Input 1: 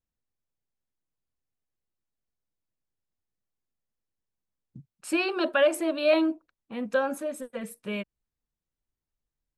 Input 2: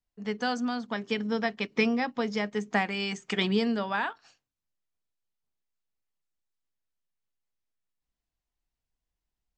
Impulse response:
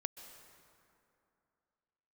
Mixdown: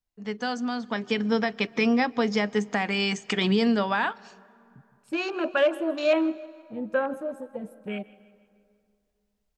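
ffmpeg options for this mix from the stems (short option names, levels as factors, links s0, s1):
-filter_complex "[0:a]afwtdn=0.0158,volume=0.376,asplit=3[s0][s1][s2];[s1]volume=0.335[s3];[s2]volume=0.112[s4];[1:a]alimiter=limit=0.106:level=0:latency=1:release=82,volume=0.794,asplit=3[s5][s6][s7];[s6]volume=0.211[s8];[s7]apad=whole_len=422445[s9];[s0][s9]sidechaincompress=threshold=0.00562:ratio=8:attack=16:release=1200[s10];[2:a]atrim=start_sample=2205[s11];[s3][s8]amix=inputs=2:normalize=0[s12];[s12][s11]afir=irnorm=-1:irlink=0[s13];[s4]aecho=0:1:163|326|489|652|815|978:1|0.45|0.202|0.0911|0.041|0.0185[s14];[s10][s5][s13][s14]amix=inputs=4:normalize=0,dynaudnorm=f=600:g=3:m=2.11"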